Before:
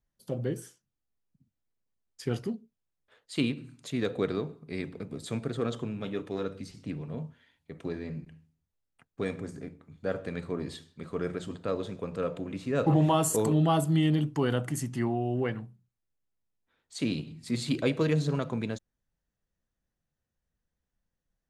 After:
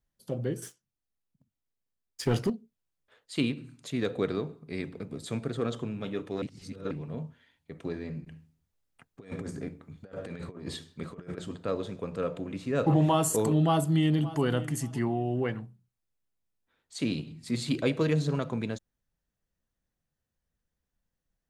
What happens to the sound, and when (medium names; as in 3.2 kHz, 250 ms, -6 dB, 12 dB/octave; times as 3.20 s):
0.62–2.50 s: waveshaping leveller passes 2
6.42–6.91 s: reverse
8.27–11.38 s: compressor with a negative ratio -38 dBFS, ratio -0.5
13.62–14.41 s: echo throw 570 ms, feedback 25%, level -16.5 dB